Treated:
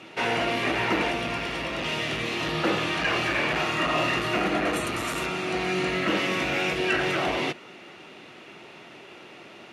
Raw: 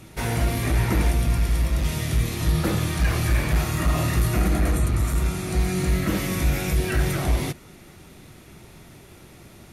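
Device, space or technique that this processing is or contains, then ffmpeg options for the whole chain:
intercom: -filter_complex "[0:a]asettb=1/sr,asplit=3[s0][s1][s2];[s0]atrim=end=4.734[s3];[s1]atrim=start=4.73:end=5.26,asetpts=PTS-STARTPTS,afade=t=in:d=0.004:c=qsin,afade=t=out:st=0.526:d=0.004:c=qsin,aemphasis=mode=production:type=50fm[s4];[s2]atrim=start=5.256[s5];[s3][s4]acrossfade=d=0.004:c1=hsin:c2=qsin[s6];[s6][s5]acrossfade=d=0.004:c1=qsin:c2=hsin,highpass=360,lowpass=3600,equalizer=f=2800:t=o:w=0.24:g=8.5,asoftclip=type=tanh:threshold=0.1,volume=1.88"

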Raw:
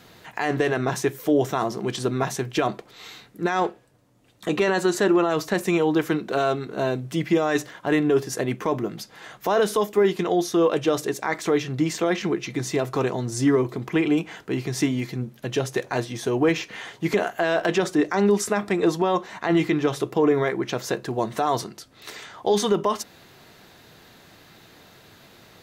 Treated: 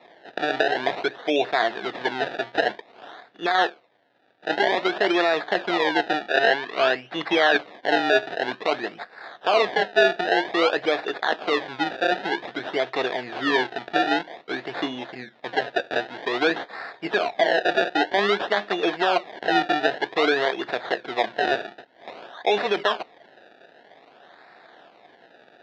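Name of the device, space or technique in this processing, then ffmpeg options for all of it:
circuit-bent sampling toy: -filter_complex "[0:a]acrusher=samples=28:mix=1:aa=0.000001:lfo=1:lforange=28:lforate=0.52,highpass=410,equalizer=f=710:t=q:w=4:g=7,equalizer=f=1100:t=q:w=4:g=-3,equalizer=f=1700:t=q:w=4:g=8,equalizer=f=3700:t=q:w=4:g=6,lowpass=f=4200:w=0.5412,lowpass=f=4200:w=1.3066,asettb=1/sr,asplit=3[s0][s1][s2];[s0]atrim=end=6.284[s3];[s1]atrim=start=6.28:end=7.57,asetpts=PTS-STARTPTS,afade=t=in:d=0.004:c=qsin,afade=t=out:st=1.286:d=0.004:c=qsin,equalizer=f=2000:w=0.44:g=5[s4];[s2]atrim=start=7.566[s5];[s3][s4]acrossfade=d=0.004:c1=hsin:c2=qsin[s6];[s6][s5]acrossfade=d=0.004:c1=qsin:c2=hsin"

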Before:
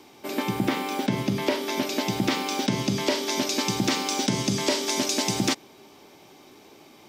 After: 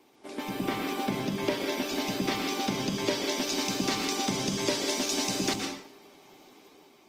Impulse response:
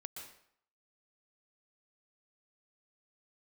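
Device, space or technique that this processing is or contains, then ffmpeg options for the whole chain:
far-field microphone of a smart speaker: -filter_complex "[1:a]atrim=start_sample=2205[s0];[0:a][s0]afir=irnorm=-1:irlink=0,highpass=150,dynaudnorm=f=230:g=5:m=1.58,volume=0.668" -ar 48000 -c:a libopus -b:a 20k

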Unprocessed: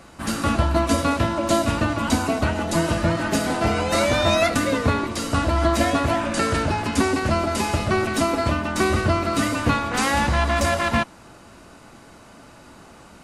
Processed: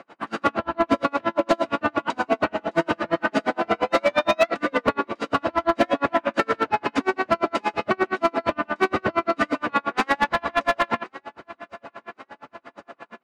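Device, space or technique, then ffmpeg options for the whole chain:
helicopter radio: -filter_complex "[0:a]asettb=1/sr,asplit=3[s0][s1][s2];[s0]atrim=end=0.494[s3];[s1]atrim=start=0.49:end=0.99,asetpts=PTS-STARTPTS,afade=t=in:d=0.004:c=qsin,afade=t=out:st=0.496:d=0.004:c=qsin,highshelf=f=5200:g=-6[s4];[s2]atrim=start=0.986[s5];[s3][s4]acrossfade=d=0.004:c1=hsin:c2=qsin[s6];[s6][s5]acrossfade=d=0.004:c1=qsin:c2=hsin,highpass=330,lowpass=2500,aecho=1:1:1084|2168|3252|4336:0.0944|0.051|0.0275|0.0149,aeval=exprs='val(0)*pow(10,-39*(0.5-0.5*cos(2*PI*8.6*n/s))/20)':c=same,asoftclip=type=hard:threshold=0.112,volume=2.51"

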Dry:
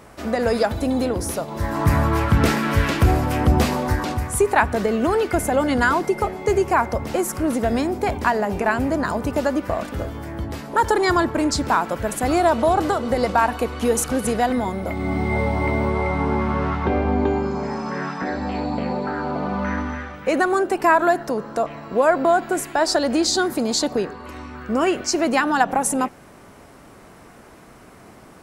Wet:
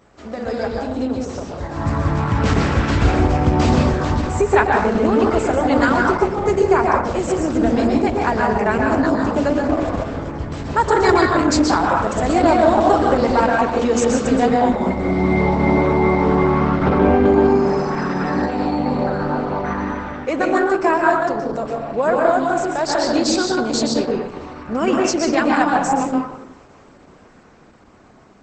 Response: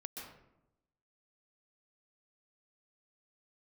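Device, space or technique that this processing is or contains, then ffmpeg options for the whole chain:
speakerphone in a meeting room: -filter_complex "[1:a]atrim=start_sample=2205[s0];[0:a][s0]afir=irnorm=-1:irlink=0,dynaudnorm=f=680:g=7:m=5.96,volume=0.891" -ar 48000 -c:a libopus -b:a 12k

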